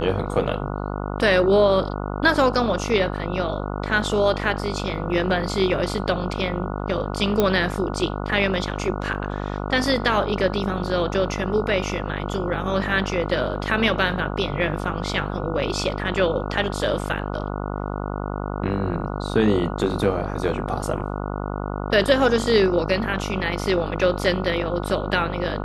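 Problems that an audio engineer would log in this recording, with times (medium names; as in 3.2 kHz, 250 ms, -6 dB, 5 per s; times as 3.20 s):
buzz 50 Hz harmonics 29 -28 dBFS
7.40 s: pop -6 dBFS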